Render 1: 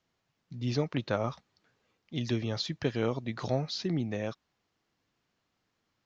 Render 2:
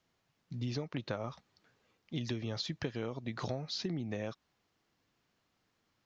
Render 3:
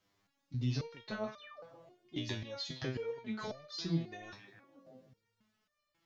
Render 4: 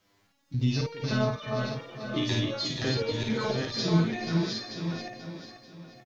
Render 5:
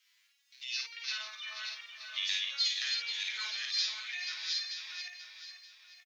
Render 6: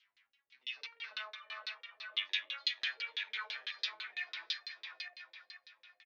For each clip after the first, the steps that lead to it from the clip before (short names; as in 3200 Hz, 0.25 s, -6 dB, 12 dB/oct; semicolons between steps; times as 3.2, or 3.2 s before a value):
compressor 10:1, threshold -34 dBFS, peak gain reduction 11.5 dB; gain +1 dB
delay with a stepping band-pass 0.157 s, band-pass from 2500 Hz, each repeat -0.7 oct, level -8 dB; painted sound fall, 1.38–1.62, 410–4300 Hz -47 dBFS; stepped resonator 3.7 Hz 100–600 Hz; gain +11 dB
regenerating reverse delay 0.462 s, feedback 43%, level -3 dB; on a send: tapped delay 53/485 ms -3.5/-8.5 dB; on the sum: gain +8 dB
in parallel at +3 dB: limiter -20.5 dBFS, peak gain reduction 8.5 dB; on the sum: ladder high-pass 1800 Hz, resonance 30%
tilt shelf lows +4.5 dB, about 840 Hz; LFO low-pass saw down 6 Hz 390–4200 Hz